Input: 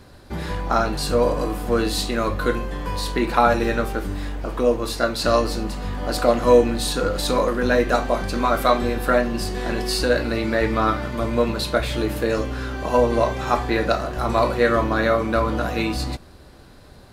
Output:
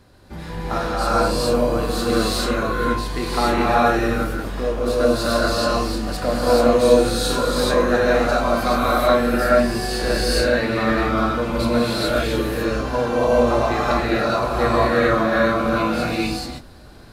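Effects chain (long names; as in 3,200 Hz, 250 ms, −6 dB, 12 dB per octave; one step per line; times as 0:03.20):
reverb whose tail is shaped and stops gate 460 ms rising, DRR −7.5 dB
level −6 dB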